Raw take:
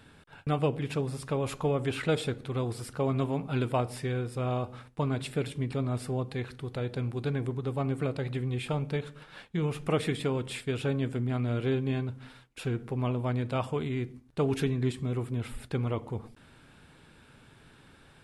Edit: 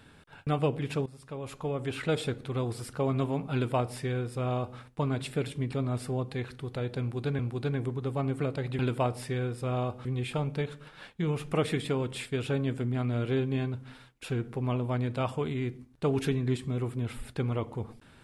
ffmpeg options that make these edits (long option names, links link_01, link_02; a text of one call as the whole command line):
ffmpeg -i in.wav -filter_complex "[0:a]asplit=5[link_01][link_02][link_03][link_04][link_05];[link_01]atrim=end=1.06,asetpts=PTS-STARTPTS,afade=type=out:start_time=1.056:duration=0.004:curve=hsin:silence=0.158489[link_06];[link_02]atrim=start=1.06:end=7.392,asetpts=PTS-STARTPTS,afade=type=in:duration=1.24:silence=0.158489[link_07];[link_03]atrim=start=6.998:end=8.402[link_08];[link_04]atrim=start=3.528:end=4.792[link_09];[link_05]atrim=start=8.398[link_10];[link_06][link_07]concat=n=2:v=0:a=1[link_11];[link_11][link_08]acrossfade=duration=0.004:curve1=hsin:curve2=hsin[link_12];[link_12][link_09]acrossfade=duration=0.004:curve1=hsin:curve2=hsin[link_13];[link_13][link_10]acrossfade=duration=0.004:curve1=hsin:curve2=hsin" out.wav